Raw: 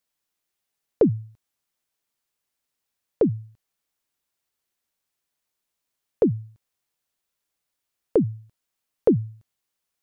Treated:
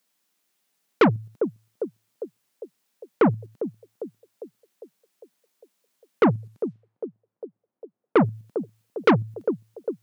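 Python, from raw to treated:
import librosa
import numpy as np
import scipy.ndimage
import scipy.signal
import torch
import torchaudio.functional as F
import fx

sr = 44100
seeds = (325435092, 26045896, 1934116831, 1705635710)

p1 = fx.level_steps(x, sr, step_db=15)
p2 = x + (p1 * librosa.db_to_amplitude(1.0))
p3 = fx.peak_eq(p2, sr, hz=200.0, db=13.0, octaves=1.8)
p4 = fx.env_lowpass(p3, sr, base_hz=700.0, full_db=-22.0, at=(6.32, 8.17), fade=0.02)
p5 = scipy.signal.sosfilt(scipy.signal.butter(2, 140.0, 'highpass', fs=sr, output='sos'), p4)
p6 = p5 + fx.echo_banded(p5, sr, ms=402, feedback_pct=62, hz=600.0, wet_db=-14.5, dry=0)
p7 = 10.0 ** (-11.5 / 20.0) * np.tanh(p6 / 10.0 ** (-11.5 / 20.0))
p8 = fx.low_shelf(p7, sr, hz=410.0, db=-11.5)
y = p8 * librosa.db_to_amplitude(5.0)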